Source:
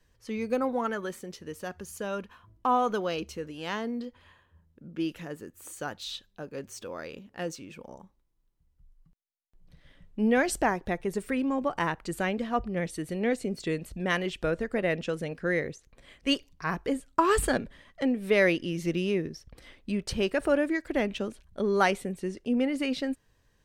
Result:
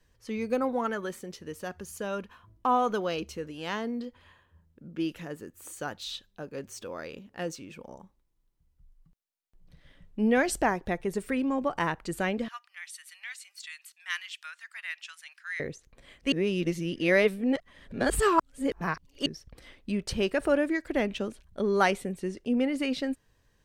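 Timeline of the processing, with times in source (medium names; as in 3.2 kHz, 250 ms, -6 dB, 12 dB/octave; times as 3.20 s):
12.48–15.60 s: Bessel high-pass 2 kHz, order 8
16.32–19.26 s: reverse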